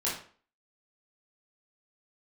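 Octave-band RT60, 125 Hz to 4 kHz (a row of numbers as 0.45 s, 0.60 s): 0.40 s, 0.45 s, 0.45 s, 0.45 s, 0.40 s, 0.35 s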